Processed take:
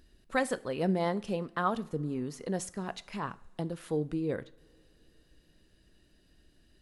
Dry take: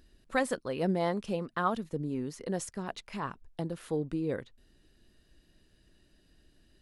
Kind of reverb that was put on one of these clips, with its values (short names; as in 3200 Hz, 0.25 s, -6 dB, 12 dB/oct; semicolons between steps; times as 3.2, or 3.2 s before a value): two-slope reverb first 0.49 s, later 4.3 s, from -22 dB, DRR 15.5 dB